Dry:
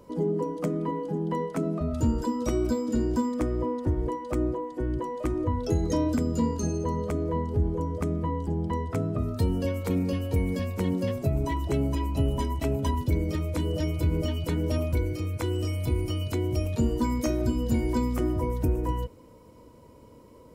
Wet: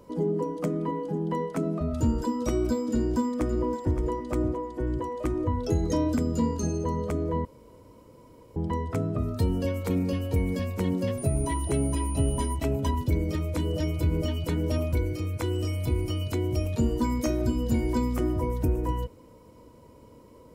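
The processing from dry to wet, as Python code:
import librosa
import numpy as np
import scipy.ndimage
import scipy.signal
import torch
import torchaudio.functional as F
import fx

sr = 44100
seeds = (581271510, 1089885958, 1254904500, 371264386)

y = fx.echo_throw(x, sr, start_s=2.88, length_s=1.07, ms=570, feedback_pct=35, wet_db=-9.5)
y = fx.dmg_tone(y, sr, hz=9500.0, level_db=-39.0, at=(11.17, 12.54), fade=0.02)
y = fx.edit(y, sr, fx.room_tone_fill(start_s=7.45, length_s=1.11), tone=tone)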